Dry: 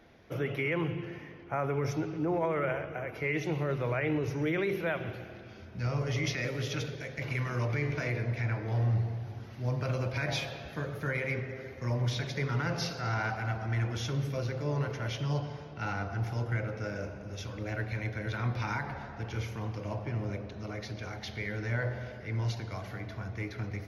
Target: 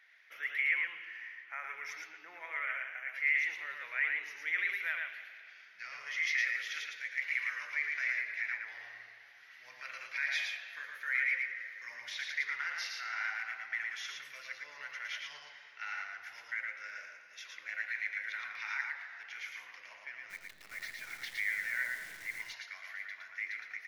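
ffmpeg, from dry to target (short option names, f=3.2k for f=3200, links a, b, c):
-filter_complex "[0:a]highpass=f=1.9k:t=q:w=4.6,asplit=3[a][b][c];[a]afade=t=out:st=20.29:d=0.02[d];[b]acrusher=bits=8:dc=4:mix=0:aa=0.000001,afade=t=in:st=20.29:d=0.02,afade=t=out:st=22.41:d=0.02[e];[c]afade=t=in:st=22.41:d=0.02[f];[d][e][f]amix=inputs=3:normalize=0,aecho=1:1:113:0.668,volume=-6.5dB"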